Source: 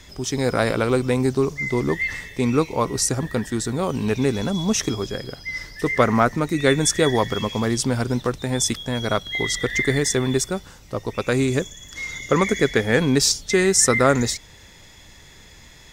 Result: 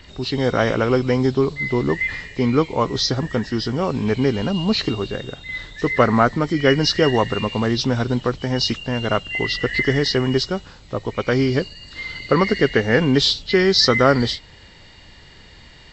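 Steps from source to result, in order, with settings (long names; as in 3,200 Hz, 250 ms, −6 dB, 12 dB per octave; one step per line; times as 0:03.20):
hearing-aid frequency compression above 2,000 Hz 1.5 to 1
level +2 dB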